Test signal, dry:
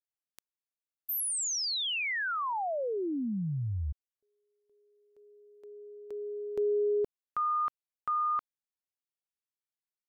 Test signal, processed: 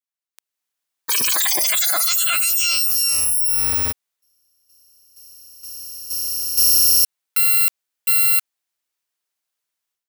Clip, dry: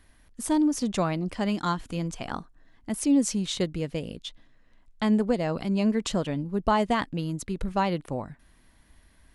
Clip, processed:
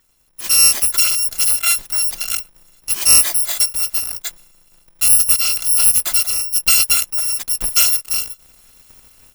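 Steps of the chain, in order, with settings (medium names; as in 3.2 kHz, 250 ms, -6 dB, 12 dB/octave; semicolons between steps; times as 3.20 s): bit-reversed sample order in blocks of 256 samples; bass shelf 420 Hz -10 dB; level rider gain up to 14 dB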